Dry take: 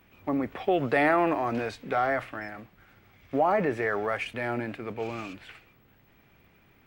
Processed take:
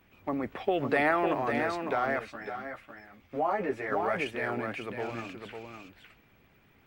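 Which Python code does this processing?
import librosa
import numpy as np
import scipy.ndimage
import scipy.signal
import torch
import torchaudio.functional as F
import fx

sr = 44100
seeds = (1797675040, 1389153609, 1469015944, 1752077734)

y = x + 10.0 ** (-6.0 / 20.0) * np.pad(x, (int(553 * sr / 1000.0), 0))[:len(x)]
y = fx.hpss(y, sr, part='percussive', gain_db=5)
y = fx.ensemble(y, sr, at=(2.19, 3.92))
y = y * librosa.db_to_amplitude(-5.5)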